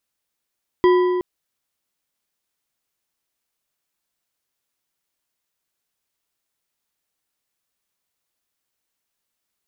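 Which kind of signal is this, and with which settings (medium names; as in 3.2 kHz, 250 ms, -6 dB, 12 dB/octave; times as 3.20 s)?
metal hit bar, length 0.37 s, lowest mode 362 Hz, decay 2.19 s, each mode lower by 8 dB, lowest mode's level -10 dB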